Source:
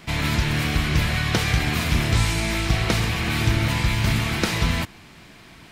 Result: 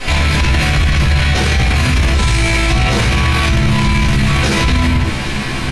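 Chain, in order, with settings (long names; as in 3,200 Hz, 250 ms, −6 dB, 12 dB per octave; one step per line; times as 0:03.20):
elliptic low-pass filter 11,000 Hz, stop band 60 dB
notch filter 690 Hz, Q 12
double-tracking delay 15 ms −3.5 dB
convolution reverb, pre-delay 4 ms, DRR −11 dB
boost into a limiter +14.5 dB
level −4.5 dB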